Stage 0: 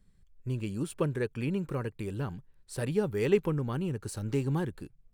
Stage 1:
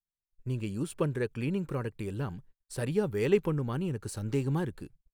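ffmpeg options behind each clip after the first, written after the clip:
-af "agate=range=-39dB:threshold=-52dB:ratio=16:detection=peak"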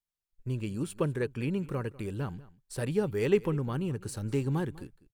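-af "aecho=1:1:198:0.0944"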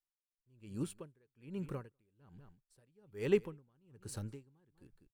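-af "aeval=exprs='val(0)*pow(10,-37*(0.5-0.5*cos(2*PI*1.2*n/s))/20)':c=same,volume=-4.5dB"

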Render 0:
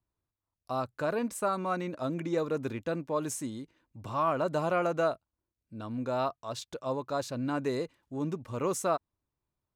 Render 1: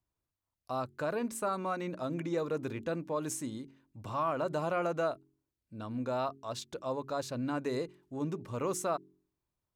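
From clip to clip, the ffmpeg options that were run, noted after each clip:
-filter_complex "[0:a]bandreject=f=45.44:t=h:w=4,bandreject=f=90.88:t=h:w=4,bandreject=f=136.32:t=h:w=4,bandreject=f=181.76:t=h:w=4,bandreject=f=227.2:t=h:w=4,bandreject=f=272.64:t=h:w=4,bandreject=f=318.08:t=h:w=4,bandreject=f=363.52:t=h:w=4,bandreject=f=408.96:t=h:w=4,asplit=2[a][b];[b]alimiter=level_in=1.5dB:limit=-24dB:level=0:latency=1:release=105,volume=-1.5dB,volume=-0.5dB[c];[a][c]amix=inputs=2:normalize=0,volume=-7dB"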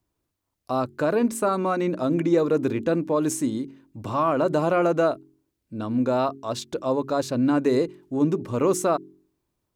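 -af "equalizer=f=310:w=0.98:g=7,volume=8dB"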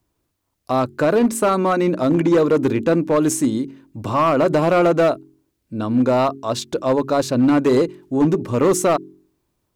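-af "volume=17dB,asoftclip=hard,volume=-17dB,volume=6.5dB"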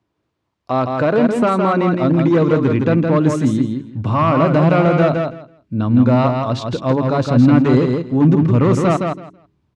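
-af "highpass=110,lowpass=3.6k,asubboost=boost=6:cutoff=160,aecho=1:1:164|328|492:0.596|0.101|0.0172,volume=1.5dB"

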